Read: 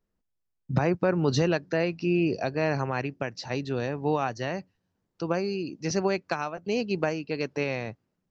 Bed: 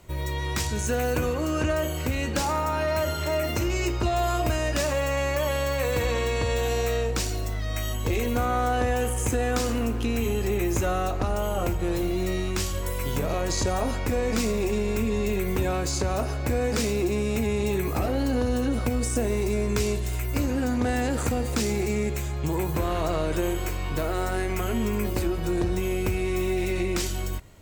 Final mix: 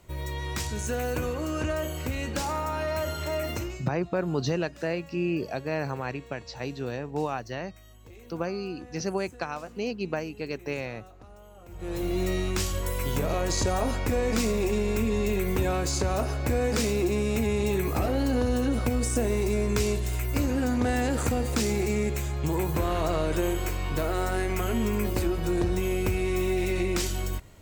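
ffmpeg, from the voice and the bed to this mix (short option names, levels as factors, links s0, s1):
-filter_complex "[0:a]adelay=3100,volume=0.668[s0];[1:a]volume=8.91,afade=t=out:st=3.52:d=0.33:silence=0.105925,afade=t=in:st=11.68:d=0.5:silence=0.0707946[s1];[s0][s1]amix=inputs=2:normalize=0"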